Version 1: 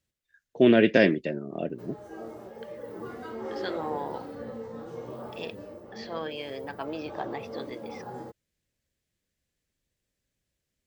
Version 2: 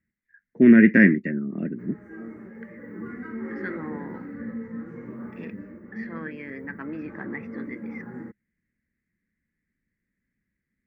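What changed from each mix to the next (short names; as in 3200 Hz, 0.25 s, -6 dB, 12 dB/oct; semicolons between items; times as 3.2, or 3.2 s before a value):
master: add EQ curve 130 Hz 0 dB, 210 Hz +12 dB, 710 Hz -15 dB, 2000 Hz +11 dB, 3200 Hz -23 dB, 7500 Hz -18 dB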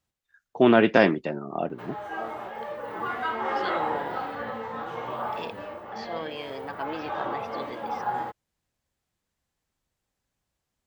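first voice: add band shelf 1000 Hz +14 dB 1.1 oct; background: add band shelf 1600 Hz +15.5 dB 2.7 oct; master: remove EQ curve 130 Hz 0 dB, 210 Hz +12 dB, 710 Hz -15 dB, 2000 Hz +11 dB, 3200 Hz -23 dB, 7500 Hz -18 dB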